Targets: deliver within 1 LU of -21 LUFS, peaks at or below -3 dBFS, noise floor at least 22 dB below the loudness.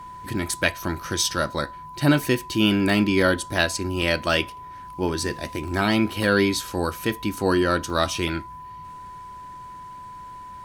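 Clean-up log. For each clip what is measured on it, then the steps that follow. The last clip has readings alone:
dropouts 3; longest dropout 1.4 ms; steady tone 1000 Hz; tone level -37 dBFS; loudness -23.0 LUFS; peak -3.0 dBFS; loudness target -21.0 LUFS
-> interpolate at 4.02/5.68/7.9, 1.4 ms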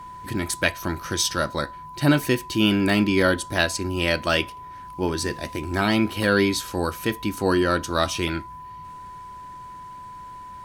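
dropouts 0; steady tone 1000 Hz; tone level -37 dBFS
-> notch 1000 Hz, Q 30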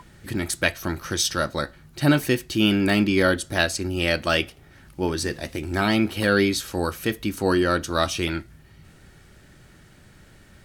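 steady tone none; loudness -23.5 LUFS; peak -3.0 dBFS; loudness target -21.0 LUFS
-> gain +2.5 dB; limiter -3 dBFS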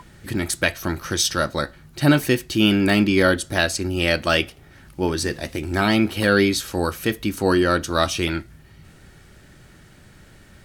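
loudness -21.0 LUFS; peak -3.0 dBFS; noise floor -49 dBFS

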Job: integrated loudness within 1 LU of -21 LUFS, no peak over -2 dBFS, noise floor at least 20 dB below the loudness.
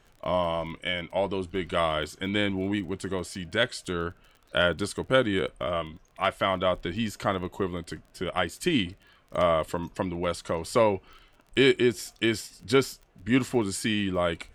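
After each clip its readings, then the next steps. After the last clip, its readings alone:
ticks 25/s; loudness -28.0 LUFS; peak -9.5 dBFS; loudness target -21.0 LUFS
-> de-click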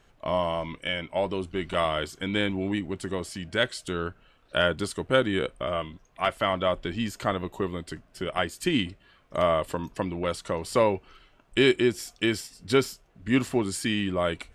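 ticks 0/s; loudness -28.0 LUFS; peak -9.5 dBFS; loudness target -21.0 LUFS
-> gain +7 dB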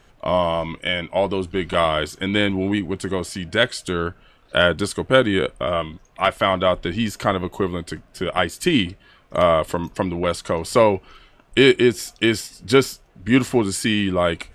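loudness -21.0 LUFS; peak -2.5 dBFS; noise floor -54 dBFS

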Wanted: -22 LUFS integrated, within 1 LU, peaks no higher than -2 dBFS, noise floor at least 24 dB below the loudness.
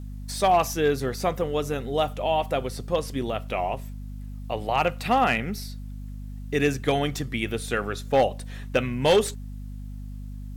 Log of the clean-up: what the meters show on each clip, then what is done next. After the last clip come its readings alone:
clipped 0.4%; flat tops at -13.0 dBFS; hum 50 Hz; harmonics up to 250 Hz; hum level -34 dBFS; loudness -25.5 LUFS; peak -13.0 dBFS; loudness target -22.0 LUFS
-> clip repair -13 dBFS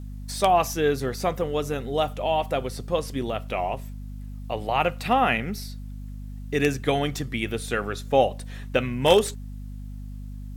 clipped 0.0%; hum 50 Hz; harmonics up to 250 Hz; hum level -34 dBFS
-> de-hum 50 Hz, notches 5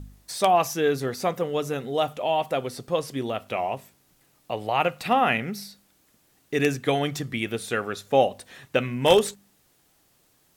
hum none; loudness -25.0 LUFS; peak -4.0 dBFS; loudness target -22.0 LUFS
-> gain +3 dB; limiter -2 dBFS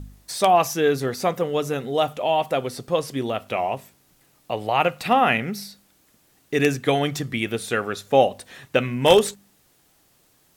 loudness -22.5 LUFS; peak -2.0 dBFS; noise floor -61 dBFS

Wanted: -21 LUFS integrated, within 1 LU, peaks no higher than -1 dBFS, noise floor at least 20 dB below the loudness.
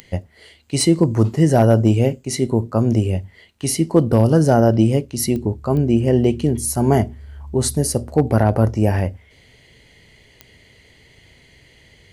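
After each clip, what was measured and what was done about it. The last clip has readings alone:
clicks 5; loudness -17.5 LUFS; peak -3.5 dBFS; loudness target -21.0 LUFS
-> de-click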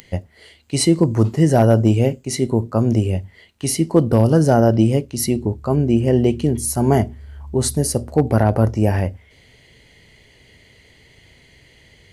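clicks 1; loudness -17.5 LUFS; peak -3.5 dBFS; loudness target -21.0 LUFS
-> gain -3.5 dB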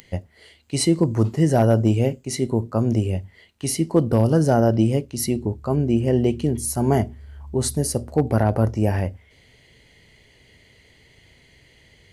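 loudness -21.0 LUFS; peak -7.0 dBFS; noise floor -55 dBFS

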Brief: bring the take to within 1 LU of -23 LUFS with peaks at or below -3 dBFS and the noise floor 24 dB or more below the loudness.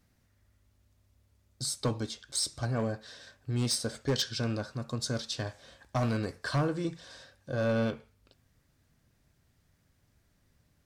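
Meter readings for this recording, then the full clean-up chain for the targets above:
clipped 0.7%; flat tops at -22.5 dBFS; loudness -32.5 LUFS; peak -22.5 dBFS; loudness target -23.0 LUFS
-> clip repair -22.5 dBFS; gain +9.5 dB

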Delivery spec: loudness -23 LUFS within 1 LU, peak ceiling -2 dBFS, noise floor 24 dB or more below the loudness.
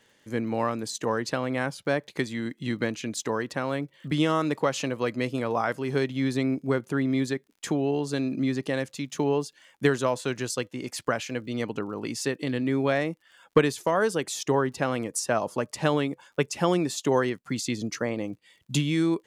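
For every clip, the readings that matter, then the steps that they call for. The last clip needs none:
ticks 52/s; loudness -28.0 LUFS; peak -7.5 dBFS; loudness target -23.0 LUFS
-> de-click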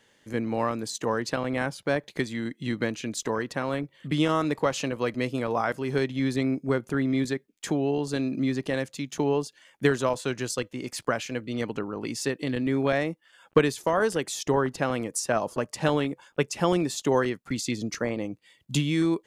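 ticks 0.16/s; loudness -28.0 LUFS; peak -8.0 dBFS; loudness target -23.0 LUFS
-> gain +5 dB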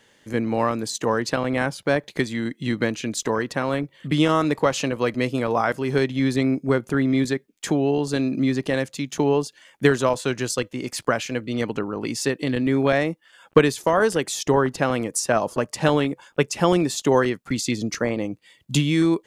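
loudness -23.0 LUFS; peak -3.0 dBFS; noise floor -60 dBFS

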